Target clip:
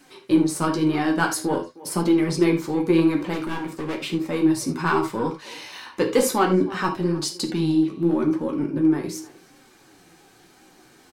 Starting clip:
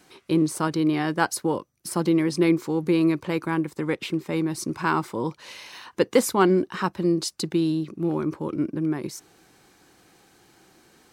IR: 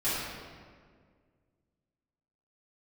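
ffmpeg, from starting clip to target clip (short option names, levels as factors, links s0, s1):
-filter_complex "[0:a]asplit=2[s0][s1];[s1]asoftclip=type=tanh:threshold=0.075,volume=0.531[s2];[s0][s2]amix=inputs=2:normalize=0,flanger=delay=7.5:depth=9.1:regen=-37:speed=0.42:shape=sinusoidal,asettb=1/sr,asplit=3[s3][s4][s5];[s3]atrim=end=3.334[s6];[s4]atrim=start=3.33:end=4.08,asetpts=PTS-STARTPTS,afade=t=in:d=0.004:c=qsin,afade=t=out:st=0.746:d=0.004:c=qsin,volume=26.6,asoftclip=hard,volume=0.0376[s7];[s5]atrim=start=4.076[s8];[s6][s7]acrossfade=d=0.004:c1=hsin:c2=qsin[s9];[s9][s8]acrossfade=d=0.004:c1=qsin:c2=hsin,flanger=delay=3.6:depth=8.3:regen=36:speed=0.94:shape=sinusoidal,asplit=2[s10][s11];[s11]adelay=310,highpass=300,lowpass=3400,asoftclip=type=hard:threshold=0.0841,volume=0.126[s12];[s10][s12]amix=inputs=2:normalize=0,asplit=2[s13][s14];[1:a]atrim=start_sample=2205,afade=t=out:st=0.14:d=0.01,atrim=end_sample=6615[s15];[s14][s15]afir=irnorm=-1:irlink=0,volume=0.282[s16];[s13][s16]amix=inputs=2:normalize=0,volume=1.78"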